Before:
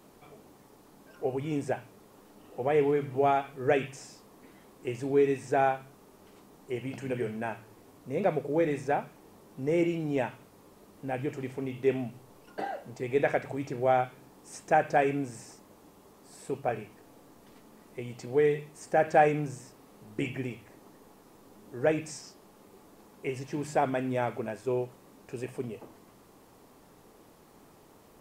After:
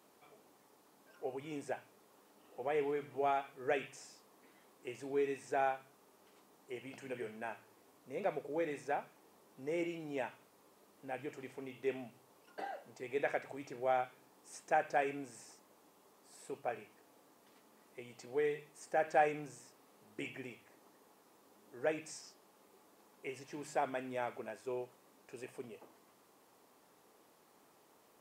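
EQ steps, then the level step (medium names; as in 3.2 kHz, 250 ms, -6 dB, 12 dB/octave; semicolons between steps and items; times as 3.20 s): high-pass 520 Hz 6 dB/octave; -6.5 dB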